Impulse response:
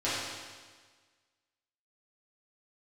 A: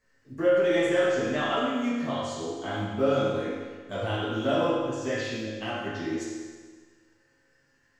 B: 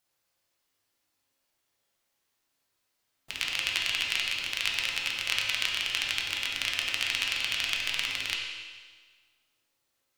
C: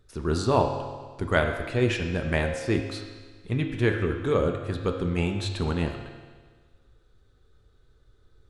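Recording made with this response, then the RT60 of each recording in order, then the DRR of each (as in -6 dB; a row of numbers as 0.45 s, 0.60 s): A; 1.5 s, 1.5 s, 1.5 s; -12.0 dB, -2.5 dB, 3.5 dB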